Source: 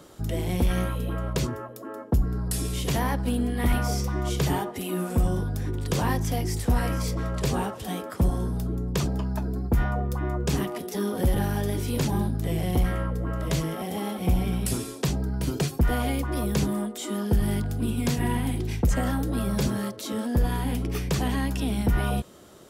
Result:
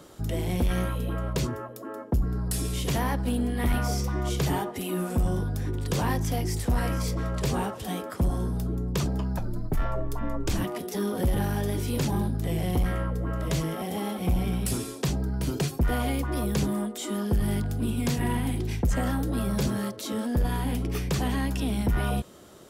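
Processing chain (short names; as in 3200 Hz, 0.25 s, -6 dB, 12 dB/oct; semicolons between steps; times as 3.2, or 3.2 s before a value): 9.38–10.64 frequency shift -80 Hz; soft clip -17 dBFS, distortion -19 dB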